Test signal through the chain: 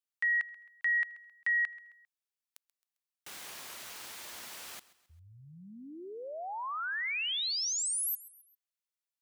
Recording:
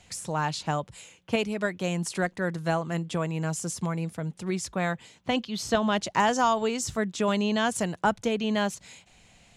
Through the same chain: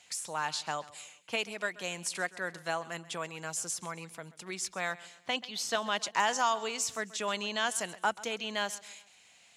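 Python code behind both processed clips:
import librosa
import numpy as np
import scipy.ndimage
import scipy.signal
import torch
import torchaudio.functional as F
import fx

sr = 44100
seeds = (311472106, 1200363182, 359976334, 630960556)

y = fx.highpass(x, sr, hz=1400.0, slope=6)
y = fx.echo_feedback(y, sr, ms=133, feedback_pct=43, wet_db=-19.0)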